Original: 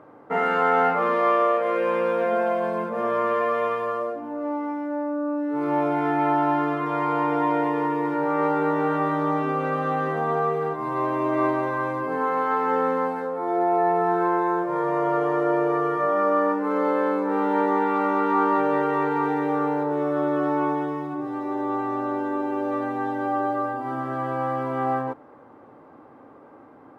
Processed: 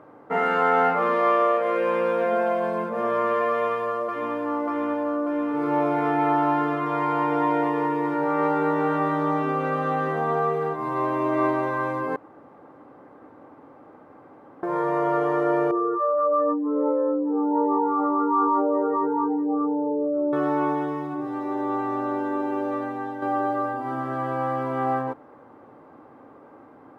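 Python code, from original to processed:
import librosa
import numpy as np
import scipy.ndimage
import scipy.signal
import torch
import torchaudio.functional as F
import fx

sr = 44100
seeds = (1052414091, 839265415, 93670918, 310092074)

y = fx.echo_throw(x, sr, start_s=3.49, length_s=0.86, ms=590, feedback_pct=75, wet_db=-4.5)
y = fx.spec_expand(y, sr, power=2.7, at=(15.71, 20.33))
y = fx.edit(y, sr, fx.room_tone_fill(start_s=12.16, length_s=2.47),
    fx.fade_out_to(start_s=22.56, length_s=0.66, floor_db=-6.5), tone=tone)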